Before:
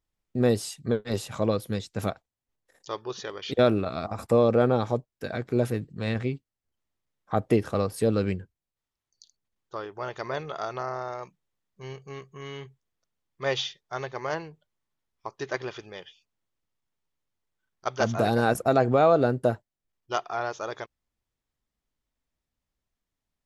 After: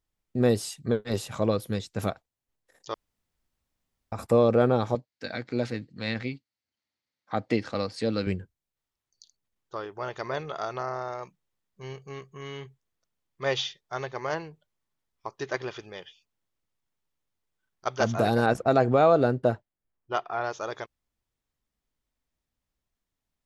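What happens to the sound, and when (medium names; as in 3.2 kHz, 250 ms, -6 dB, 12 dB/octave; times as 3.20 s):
2.94–4.12 s: room tone
4.95–8.27 s: cabinet simulation 140–6800 Hz, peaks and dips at 160 Hz -9 dB, 400 Hz -9 dB, 660 Hz -4 dB, 1.1 kHz -4 dB, 2.1 kHz +5 dB, 4.4 kHz +9 dB
18.46–20.44 s: level-controlled noise filter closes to 1.6 kHz, open at -15.5 dBFS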